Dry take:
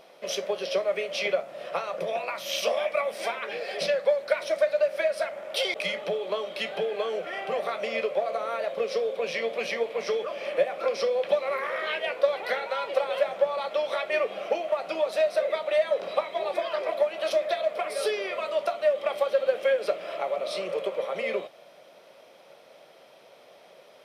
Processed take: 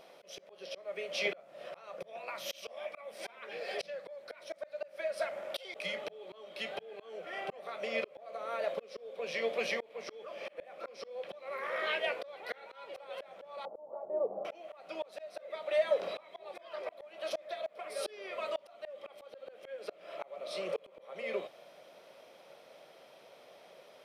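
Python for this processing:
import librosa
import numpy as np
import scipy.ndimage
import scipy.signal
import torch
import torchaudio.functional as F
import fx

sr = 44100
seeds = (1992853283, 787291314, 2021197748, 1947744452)

y = fx.ellip_lowpass(x, sr, hz=920.0, order=4, stop_db=80, at=(13.65, 14.45))
y = fx.auto_swell(y, sr, attack_ms=521.0)
y = F.gain(torch.from_numpy(y), -3.5).numpy()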